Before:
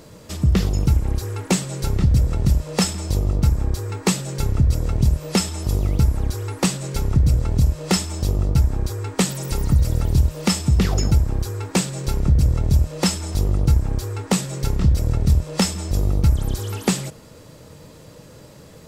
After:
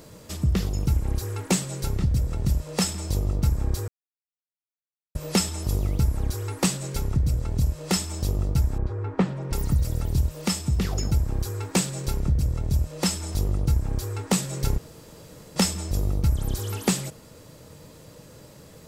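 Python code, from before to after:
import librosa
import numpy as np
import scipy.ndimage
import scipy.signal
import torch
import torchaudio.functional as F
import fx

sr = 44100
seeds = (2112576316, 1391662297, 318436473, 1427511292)

y = fx.lowpass(x, sr, hz=1500.0, slope=12, at=(8.78, 9.53))
y = fx.edit(y, sr, fx.silence(start_s=3.88, length_s=1.27),
    fx.room_tone_fill(start_s=14.78, length_s=0.78), tone=tone)
y = fx.high_shelf(y, sr, hz=9200.0, db=6.0)
y = fx.rider(y, sr, range_db=3, speed_s=0.5)
y = y * librosa.db_to_amplitude(-5.0)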